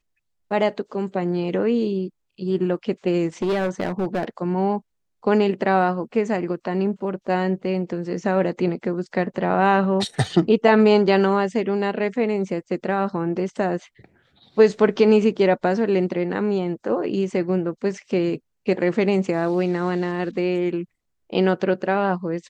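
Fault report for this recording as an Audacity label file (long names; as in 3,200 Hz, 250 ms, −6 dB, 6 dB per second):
3.420000	4.250000	clipping −18.5 dBFS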